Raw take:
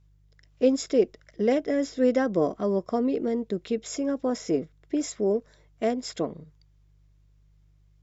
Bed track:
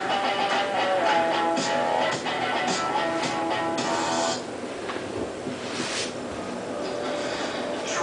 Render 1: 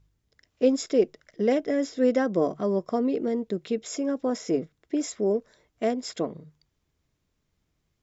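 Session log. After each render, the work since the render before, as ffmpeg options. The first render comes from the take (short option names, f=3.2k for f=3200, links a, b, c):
-af "bandreject=f=50:t=h:w=4,bandreject=f=100:t=h:w=4,bandreject=f=150:t=h:w=4"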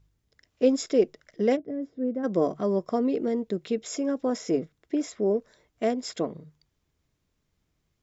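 -filter_complex "[0:a]asplit=3[a][b][c];[a]afade=t=out:st=1.55:d=0.02[d];[b]bandpass=f=120:t=q:w=0.77,afade=t=in:st=1.55:d=0.02,afade=t=out:st=2.23:d=0.02[e];[c]afade=t=in:st=2.23:d=0.02[f];[d][e][f]amix=inputs=3:normalize=0,asettb=1/sr,asplit=3[g][h][i];[g]atrim=end=4.954[j];[h]atrim=start=4.95:end=5.37,asetpts=PTS-STARTPTS,afade=t=in:d=0.004:c=qsin,afade=t=out:st=0.416:d=0.004:c=qsin,highshelf=f=6k:g=-11[k];[i]atrim=start=5.366[l];[j][k]acrossfade=d=0.004:c1=hsin:c2=qsin[m];[m][l]acrossfade=d=0.004:c1=qsin:c2=hsin"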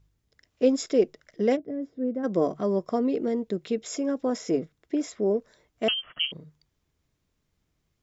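-filter_complex "[0:a]asettb=1/sr,asplit=3[a][b][c];[a]atrim=end=5.884[d];[b]atrim=start=5.88:end=6.32,asetpts=PTS-STARTPTS,afade=t=in:d=0.004:c=qsin,afade=t=out:st=0.436:d=0.004:c=qsin,lowpass=f=2.9k:t=q:w=0.5098,lowpass=f=2.9k:t=q:w=0.6013,lowpass=f=2.9k:t=q:w=0.9,lowpass=f=2.9k:t=q:w=2.563,afreqshift=-3400[e];[c]atrim=start=6.316[f];[d][e]acrossfade=d=0.004:c1=hsin:c2=qsin[g];[g][f]acrossfade=d=0.004:c1=qsin:c2=hsin"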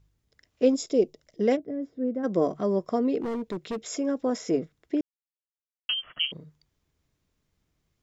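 -filter_complex "[0:a]asettb=1/sr,asplit=3[a][b][c];[a]atrim=end=0.744[d];[b]atrim=start=0.74:end=1.41,asetpts=PTS-STARTPTS,afade=t=in:d=0.004:c=qsin,afade=t=out:st=0.666:d=0.004:c=qsin,equalizer=f=1.6k:w=1.3:g=-14.5[e];[c]atrim=start=1.406[f];[d][e]acrossfade=d=0.004:c1=hsin:c2=qsin[g];[g][f]acrossfade=d=0.004:c1=qsin:c2=hsin,asettb=1/sr,asplit=3[h][i][j];[h]atrim=end=3.204[k];[i]atrim=start=3.2:end=3.82,asetpts=PTS-STARTPTS,afade=t=in:d=0.004:c=qsin,afade=t=out:st=0.616:d=0.004:c=qsin,asoftclip=type=hard:threshold=-27.5dB[l];[j]atrim=start=3.816[m];[k][l]acrossfade=d=0.004:c1=hsin:c2=qsin[n];[n][m]acrossfade=d=0.004:c1=qsin:c2=hsin,asplit=3[o][p][q];[o]atrim=end=5.01,asetpts=PTS-STARTPTS,afade=t=out:st=5.006:d=0.004:c=hsin[r];[p]atrim=start=5.01:end=5.89,asetpts=PTS-STARTPTS,volume=0[s];[q]atrim=start=5.89,asetpts=PTS-STARTPTS,afade=t=in:d=0.004:c=hsin[t];[r][s][t]concat=n=3:v=0:a=1"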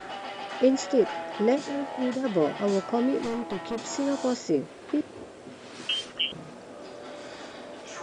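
-filter_complex "[1:a]volume=-12.5dB[a];[0:a][a]amix=inputs=2:normalize=0"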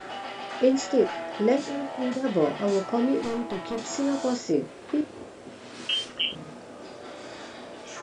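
-filter_complex "[0:a]asplit=2[a][b];[b]adelay=33,volume=-6.5dB[c];[a][c]amix=inputs=2:normalize=0"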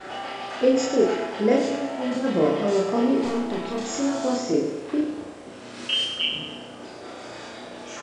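-filter_complex "[0:a]asplit=2[a][b];[b]adelay=33,volume=-5.5dB[c];[a][c]amix=inputs=2:normalize=0,asplit=2[d][e];[e]aecho=0:1:99|198|297|396|495|594:0.422|0.219|0.114|0.0593|0.0308|0.016[f];[d][f]amix=inputs=2:normalize=0"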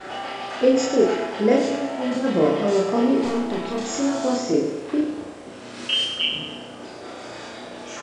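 -af "volume=2dB"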